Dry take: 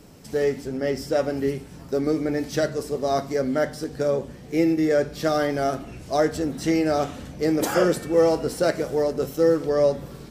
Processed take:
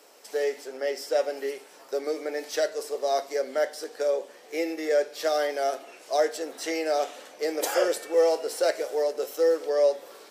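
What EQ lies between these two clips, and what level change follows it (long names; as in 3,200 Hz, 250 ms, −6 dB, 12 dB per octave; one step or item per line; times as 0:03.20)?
high-pass filter 460 Hz 24 dB per octave
dynamic equaliser 1,200 Hz, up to −7 dB, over −41 dBFS, Q 1.7
0.0 dB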